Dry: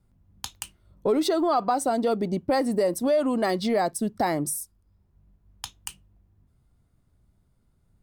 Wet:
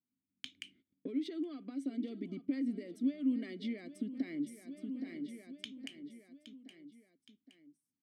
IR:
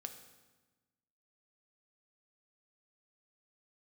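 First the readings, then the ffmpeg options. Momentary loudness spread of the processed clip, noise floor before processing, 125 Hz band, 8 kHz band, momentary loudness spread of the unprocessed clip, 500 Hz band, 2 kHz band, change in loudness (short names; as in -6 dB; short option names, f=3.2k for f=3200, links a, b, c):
19 LU, -67 dBFS, -17.0 dB, under -25 dB, 17 LU, -24.0 dB, -16.0 dB, -14.5 dB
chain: -filter_complex "[0:a]highpass=110,bandreject=f=1.4k:w=15,agate=range=-22dB:threshold=-56dB:ratio=16:detection=peak,aecho=1:1:818|1636|2454|3272:0.141|0.065|0.0299|0.0137,acompressor=threshold=-37dB:ratio=6,asplit=3[a][b][c];[a]bandpass=f=270:t=q:w=8,volume=0dB[d];[b]bandpass=f=2.29k:t=q:w=8,volume=-6dB[e];[c]bandpass=f=3.01k:t=q:w=8,volume=-9dB[f];[d][e][f]amix=inputs=3:normalize=0,volume=11dB"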